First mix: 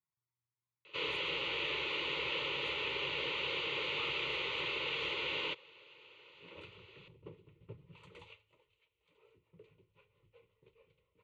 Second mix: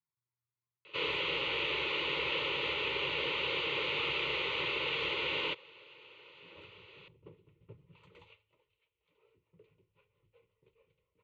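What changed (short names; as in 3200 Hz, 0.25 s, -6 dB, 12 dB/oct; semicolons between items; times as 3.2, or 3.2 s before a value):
first sound +4.0 dB; second sound -3.0 dB; master: add air absorption 73 m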